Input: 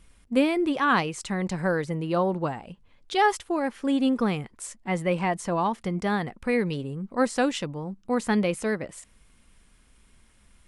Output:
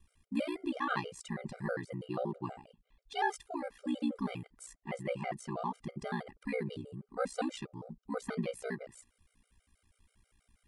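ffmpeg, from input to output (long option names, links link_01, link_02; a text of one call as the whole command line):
ffmpeg -i in.wav -af "aeval=exprs='val(0)*sin(2*PI*30*n/s)':channel_layout=same,afftfilt=real='re*gt(sin(2*PI*6.2*pts/sr)*(1-2*mod(floor(b*sr/1024/400),2)),0)':imag='im*gt(sin(2*PI*6.2*pts/sr)*(1-2*mod(floor(b*sr/1024/400),2)),0)':win_size=1024:overlap=0.75,volume=-6dB" out.wav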